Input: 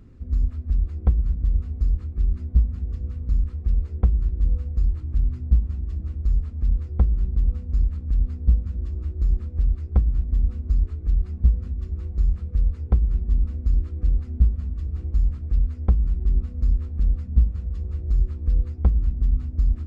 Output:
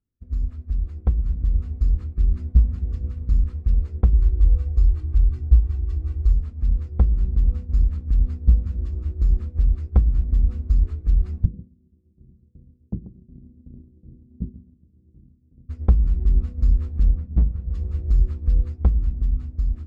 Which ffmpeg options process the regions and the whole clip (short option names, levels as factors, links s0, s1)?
-filter_complex "[0:a]asettb=1/sr,asplit=3[s0][s1][s2];[s0]atrim=end=4.134[s3];[s1]atrim=start=4.13:end=6.33,asetpts=PTS-STARTPTS,afade=t=in:d=0.004:c=qsin,afade=t=out:st=2.196:d=0.004:c=qsin,equalizer=f=200:t=o:w=0.38:g=-7.5,aecho=1:1:2.6:0.75,atrim=end_sample=97020[s4];[s2]atrim=start=6.326[s5];[s3][s4]acrossfade=d=0.004:c1=hsin:c2=qsin[s6];[s6][s5]acrossfade=d=0.004:c1=qsin:c2=hsin,asettb=1/sr,asplit=3[s7][s8][s9];[s7]atrim=end=11.454[s10];[s8]atrim=start=11.45:end=15.69,asetpts=PTS-STARTPTS,afade=t=in:d=0.004:c=qsin,afade=t=out:st=4.236:d=0.004:c=qsin,asuperpass=centerf=210:order=4:qfactor=0.99,aecho=1:1:138:0.447,atrim=end_sample=186984[s11];[s9]atrim=start=15.686[s12];[s10][s11]acrossfade=d=0.004:c1=hsin:c2=qsin[s13];[s13][s12]acrossfade=d=0.004:c1=qsin:c2=hsin,asettb=1/sr,asplit=3[s14][s15][s16];[s14]atrim=end=17.114[s17];[s15]atrim=start=17.11:end=17.7,asetpts=PTS-STARTPTS,afade=t=in:d=0.004:c=qsin,afade=t=out:st=0.586:d=0.004:c=qsin,lowpass=f=1000:p=1,tremolo=f=90:d=0.4,asoftclip=type=hard:threshold=0.168[s18];[s16]atrim=start=17.696[s19];[s17][s18]acrossfade=d=0.004:c1=hsin:c2=qsin[s20];[s20][s19]acrossfade=d=0.004:c1=qsin:c2=hsin,agate=range=0.0224:threshold=0.0501:ratio=3:detection=peak,dynaudnorm=f=400:g=7:m=3.76,volume=0.708"